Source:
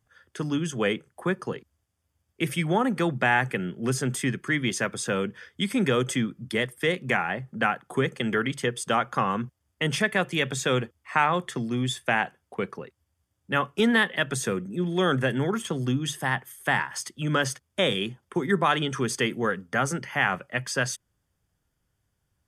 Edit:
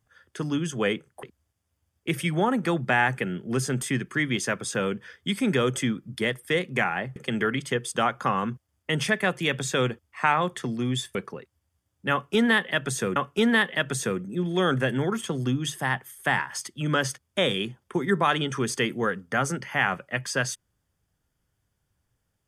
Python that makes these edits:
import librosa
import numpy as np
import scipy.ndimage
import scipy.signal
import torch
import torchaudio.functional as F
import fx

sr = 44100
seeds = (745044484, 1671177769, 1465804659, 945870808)

y = fx.edit(x, sr, fx.cut(start_s=1.23, length_s=0.33),
    fx.cut(start_s=7.49, length_s=0.59),
    fx.cut(start_s=12.07, length_s=0.53),
    fx.repeat(start_s=13.57, length_s=1.04, count=2), tone=tone)